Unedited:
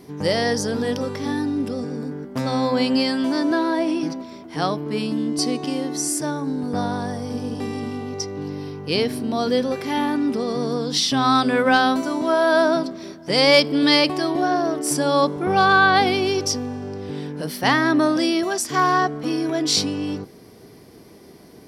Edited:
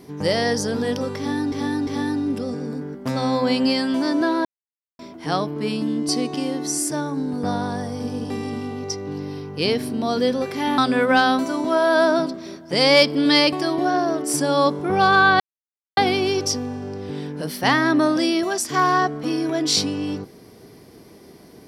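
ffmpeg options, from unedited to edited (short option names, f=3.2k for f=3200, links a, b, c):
-filter_complex "[0:a]asplit=7[a][b][c][d][e][f][g];[a]atrim=end=1.522[h];[b]atrim=start=1.168:end=1.522[i];[c]atrim=start=1.168:end=3.75,asetpts=PTS-STARTPTS,afade=t=out:st=2.578:d=0.004:c=hsin[j];[d]atrim=start=3.75:end=4.29,asetpts=PTS-STARTPTS,volume=0[k];[e]atrim=start=4.29:end=10.082,asetpts=PTS-STARTPTS,afade=t=in:d=0.004:c=hsin[l];[f]atrim=start=11.348:end=15.97,asetpts=PTS-STARTPTS,afade=t=out:st=4.618:d=0.004:c=hsin,apad=pad_dur=0.57[m];[g]atrim=start=15.97,asetpts=PTS-STARTPTS,afade=t=in:d=0.004:c=hsin[n];[h][i]acrossfade=d=0.004:c1=hsin:c2=hsin[o];[j][k][l]concat=n=3:v=0:a=1[p];[o][p]acrossfade=d=0.004:c1=hsin:c2=hsin[q];[m][n]concat=n=2:v=0:a=1[r];[q][r]acrossfade=d=0.004:c1=hsin:c2=hsin"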